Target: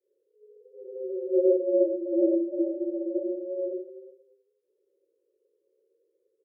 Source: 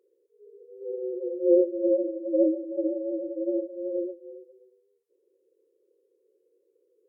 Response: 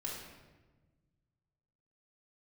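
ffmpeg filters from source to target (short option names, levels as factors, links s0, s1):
-filter_complex "[0:a]adynamicequalizer=threshold=0.0112:dfrequency=270:dqfactor=1.9:tfrequency=270:tqfactor=1.9:attack=5:release=100:ratio=0.375:range=3.5:mode=boostabove:tftype=bell,atempo=1.1,afreqshift=13[s0];[1:a]atrim=start_sample=2205,afade=t=out:st=0.21:d=0.01,atrim=end_sample=9702[s1];[s0][s1]afir=irnorm=-1:irlink=0,volume=0.596"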